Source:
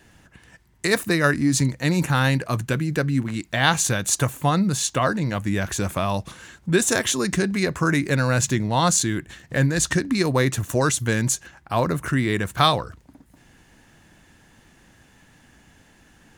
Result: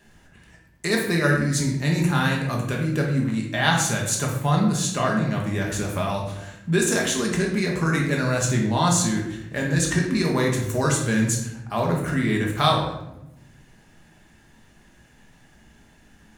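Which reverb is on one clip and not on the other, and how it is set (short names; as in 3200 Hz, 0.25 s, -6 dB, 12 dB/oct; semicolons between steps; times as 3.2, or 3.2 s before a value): shoebox room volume 270 m³, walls mixed, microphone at 1.3 m; gain -5 dB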